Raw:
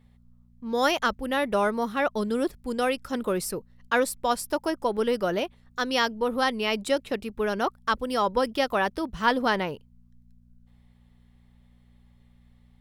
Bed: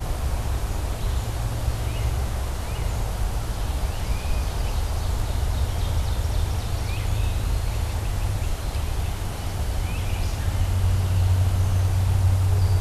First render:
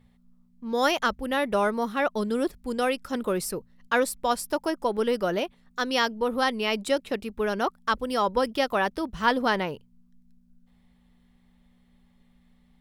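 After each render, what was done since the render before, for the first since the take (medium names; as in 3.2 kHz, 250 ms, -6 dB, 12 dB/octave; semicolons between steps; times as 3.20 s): de-hum 60 Hz, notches 2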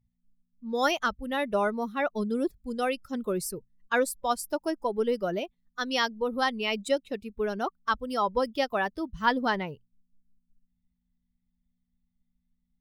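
expander on every frequency bin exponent 1.5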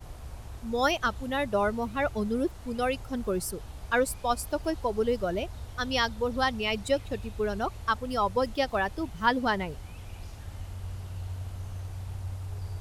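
add bed -16.5 dB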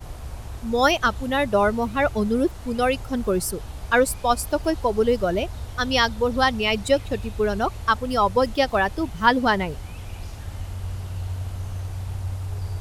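trim +7 dB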